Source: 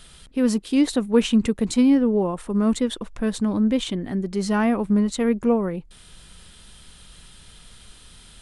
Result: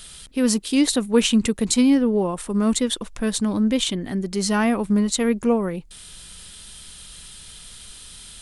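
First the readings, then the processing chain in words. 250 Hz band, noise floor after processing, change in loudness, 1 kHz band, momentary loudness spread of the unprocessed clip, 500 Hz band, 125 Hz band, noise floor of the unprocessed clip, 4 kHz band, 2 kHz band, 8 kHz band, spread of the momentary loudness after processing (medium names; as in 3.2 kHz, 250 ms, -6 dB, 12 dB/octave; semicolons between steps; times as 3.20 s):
0.0 dB, -43 dBFS, +1.0 dB, +1.0 dB, 8 LU, +0.5 dB, 0.0 dB, -48 dBFS, +6.5 dB, +3.5 dB, +9.5 dB, 21 LU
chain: treble shelf 2.9 kHz +11 dB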